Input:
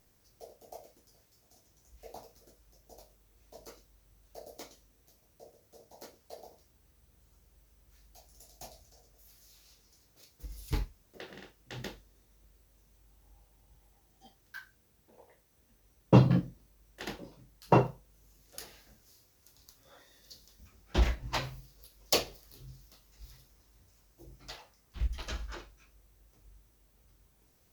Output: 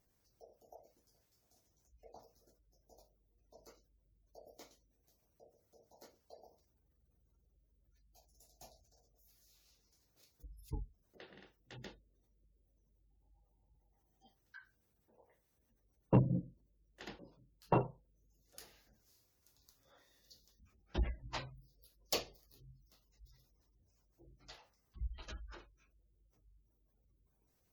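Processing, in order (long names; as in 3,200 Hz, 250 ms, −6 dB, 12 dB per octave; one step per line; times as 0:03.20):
gate on every frequency bin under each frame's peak −25 dB strong
harmonic generator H 4 −22 dB, 5 −32 dB, 7 −30 dB, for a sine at −6.5 dBFS
level −8.5 dB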